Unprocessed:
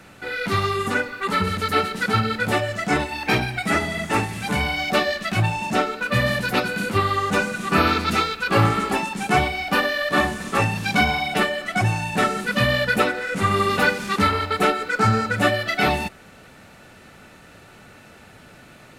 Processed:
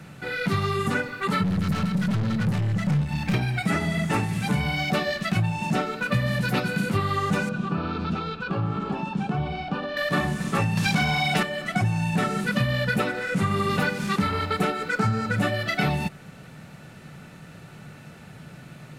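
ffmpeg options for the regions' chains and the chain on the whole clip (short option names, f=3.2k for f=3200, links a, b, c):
-filter_complex "[0:a]asettb=1/sr,asplit=3[a][b][c];[a]atrim=end=1.434[d];[b]atrim=start=1.43:end=3.34,asetpts=PTS-STARTPTS,afade=t=in:d=0.004:c=qsin,afade=t=out:st=1.906:d=0.004:c=qsin,highpass=f=54:w=0.5412,highpass=f=54:w=1.3066,lowshelf=f=250:t=q:w=3:g=11,aeval=exprs='(tanh(15.8*val(0)+0.4)-tanh(0.4))/15.8':c=same[e];[c]atrim=start=3.336[f];[d][e]acrossfade=d=0.004:c1=hsin:c2=qsin[g];[g][f]acrossfade=d=0.004:c1=qsin:c2=hsin,asettb=1/sr,asplit=3[h][i][j];[h]atrim=end=7.494[k];[i]atrim=start=7.49:end=9.97,asetpts=PTS-STARTPTS,afade=t=in:d=0.004:c=qsin,afade=t=out:st=2.476:d=0.004:c=qsin,lowpass=2.9k,equalizer=f=2k:t=o:w=0.37:g=-14.5,acompressor=threshold=-25dB:ratio=6:attack=3.2:release=140:knee=1:detection=peak[l];[j]atrim=start=9.966[m];[k][l]acrossfade=d=0.004:c1=hsin:c2=qsin[n];[n][m]acrossfade=d=0.004:c1=qsin:c2=hsin,asettb=1/sr,asplit=3[o][p][q];[o]atrim=end=10.774[r];[p]atrim=start=10.77:end=11.43,asetpts=PTS-STARTPTS,afade=t=in:d=0.004:c=qsin,afade=t=out:st=0.656:d=0.004:c=qsin,bass=f=250:g=6,treble=f=4k:g=8,asplit=2[s][t];[t]highpass=f=720:p=1,volume=16dB,asoftclip=type=tanh:threshold=-4.5dB[u];[s][u]amix=inputs=2:normalize=0,lowpass=f=3.5k:p=1,volume=-6dB[v];[q]atrim=start=11.426[w];[r][v]acrossfade=d=0.004:c1=hsin:c2=qsin[x];[x][w]acrossfade=d=0.004:c1=qsin:c2=hsin,equalizer=f=150:t=o:w=0.72:g=15,acompressor=threshold=-18dB:ratio=6,volume=-2dB"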